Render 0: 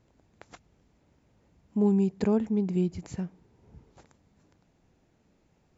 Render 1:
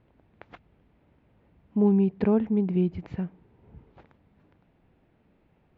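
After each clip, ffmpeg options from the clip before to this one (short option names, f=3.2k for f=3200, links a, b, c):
-af "lowpass=f=3.2k:w=0.5412,lowpass=f=3.2k:w=1.3066,volume=2.5dB"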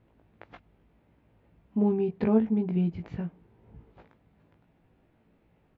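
-filter_complex "[0:a]asplit=2[a][b];[b]adelay=18,volume=-4dB[c];[a][c]amix=inputs=2:normalize=0,volume=-2.5dB"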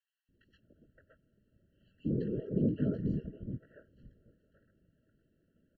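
-filter_complex "[0:a]acrossover=split=470|2000[a][b][c];[a]adelay=290[d];[b]adelay=570[e];[d][e][c]amix=inputs=3:normalize=0,afftfilt=real='hypot(re,im)*cos(2*PI*random(0))':imag='hypot(re,im)*sin(2*PI*random(1))':win_size=512:overlap=0.75,afftfilt=real='re*eq(mod(floor(b*sr/1024/660),2),0)':imag='im*eq(mod(floor(b*sr/1024/660),2),0)':win_size=1024:overlap=0.75"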